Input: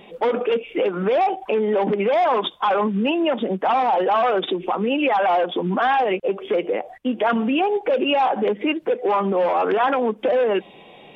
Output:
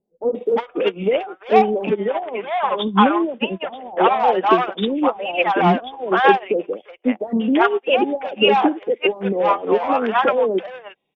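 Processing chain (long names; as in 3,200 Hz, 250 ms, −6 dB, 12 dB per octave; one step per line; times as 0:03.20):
0:01.60–0:03.85: elliptic low-pass filter 3,500 Hz, stop band 50 dB
multiband delay without the direct sound lows, highs 350 ms, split 650 Hz
expander for the loud parts 2.5 to 1, over −42 dBFS
level +8.5 dB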